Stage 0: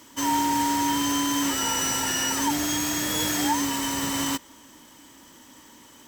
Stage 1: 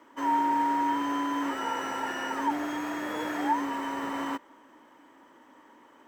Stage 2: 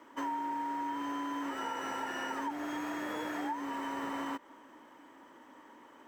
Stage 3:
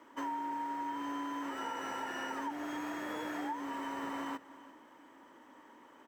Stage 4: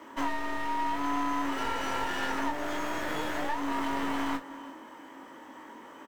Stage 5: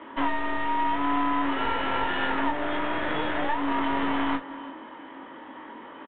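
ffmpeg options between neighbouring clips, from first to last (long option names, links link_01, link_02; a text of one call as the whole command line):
ffmpeg -i in.wav -filter_complex "[0:a]acrossover=split=280 2000:gain=0.1 1 0.0631[link_01][link_02][link_03];[link_01][link_02][link_03]amix=inputs=3:normalize=0" out.wav
ffmpeg -i in.wav -af "acompressor=threshold=-34dB:ratio=6" out.wav
ffmpeg -i in.wav -af "aecho=1:1:345:0.119,volume=-2dB" out.wav
ffmpeg -i in.wav -af "aeval=exprs='clip(val(0),-1,0.00335)':channel_layout=same,aecho=1:1:22|54:0.562|0.178,volume=9dB" out.wav
ffmpeg -i in.wav -af "aresample=8000,aresample=44100,volume=5dB" out.wav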